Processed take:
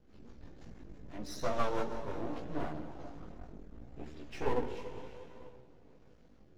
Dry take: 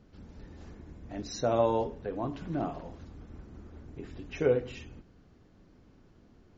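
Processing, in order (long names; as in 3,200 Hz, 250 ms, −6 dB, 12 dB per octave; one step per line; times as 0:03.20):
dense smooth reverb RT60 2.9 s, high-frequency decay 0.85×, pre-delay 0 ms, DRR 5.5 dB
rotating-speaker cabinet horn 6 Hz, later 1 Hz, at 0:02.01
half-wave rectification
multi-voice chorus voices 2, 0.72 Hz, delay 17 ms, depth 4.1 ms
level +3.5 dB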